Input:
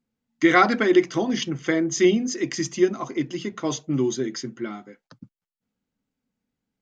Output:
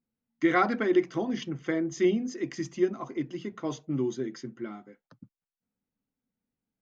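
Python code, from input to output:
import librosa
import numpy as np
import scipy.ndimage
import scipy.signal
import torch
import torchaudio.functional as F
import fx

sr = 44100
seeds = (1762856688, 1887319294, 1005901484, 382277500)

y = fx.high_shelf(x, sr, hz=3100.0, db=-11.0)
y = F.gain(torch.from_numpy(y), -6.0).numpy()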